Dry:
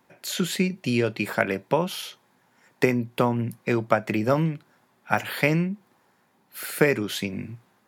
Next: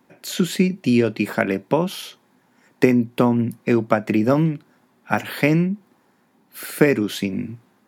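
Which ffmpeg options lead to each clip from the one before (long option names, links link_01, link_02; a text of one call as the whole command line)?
ffmpeg -i in.wav -af "equalizer=frequency=260:width_type=o:width=1.2:gain=8,volume=1dB" out.wav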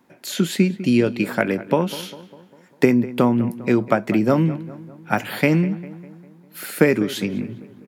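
ffmpeg -i in.wav -filter_complex "[0:a]asplit=2[link_01][link_02];[link_02]adelay=200,lowpass=frequency=2400:poles=1,volume=-16dB,asplit=2[link_03][link_04];[link_04]adelay=200,lowpass=frequency=2400:poles=1,volume=0.54,asplit=2[link_05][link_06];[link_06]adelay=200,lowpass=frequency=2400:poles=1,volume=0.54,asplit=2[link_07][link_08];[link_08]adelay=200,lowpass=frequency=2400:poles=1,volume=0.54,asplit=2[link_09][link_10];[link_10]adelay=200,lowpass=frequency=2400:poles=1,volume=0.54[link_11];[link_01][link_03][link_05][link_07][link_09][link_11]amix=inputs=6:normalize=0" out.wav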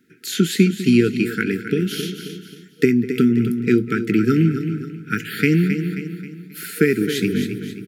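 ffmpeg -i in.wav -af "aecho=1:1:267|534|801|1068:0.299|0.122|0.0502|0.0206,dynaudnorm=framelen=110:gausssize=5:maxgain=4.5dB,afftfilt=real='re*(1-between(b*sr/4096,470,1300))':imag='im*(1-between(b*sr/4096,470,1300))':win_size=4096:overlap=0.75" out.wav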